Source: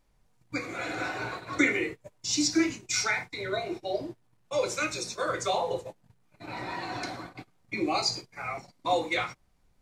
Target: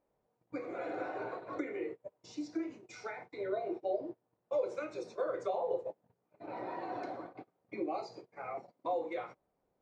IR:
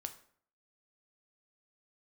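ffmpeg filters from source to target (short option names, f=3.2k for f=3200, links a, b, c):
-af "acompressor=threshold=-30dB:ratio=6,bandpass=f=510:t=q:w=1.6:csg=0,volume=2dB"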